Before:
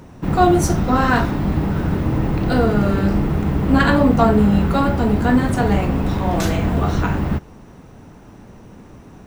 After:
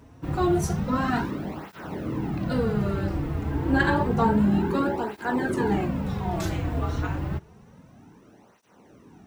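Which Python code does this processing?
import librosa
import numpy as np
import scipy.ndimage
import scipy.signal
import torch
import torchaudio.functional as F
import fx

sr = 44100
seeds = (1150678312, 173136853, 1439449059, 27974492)

y = fx.small_body(x, sr, hz=(370.0, 890.0, 1600.0), ring_ms=45, db=11, at=(3.51, 5.88))
y = fx.flanger_cancel(y, sr, hz=0.29, depth_ms=5.6)
y = F.gain(torch.from_numpy(y), -6.5).numpy()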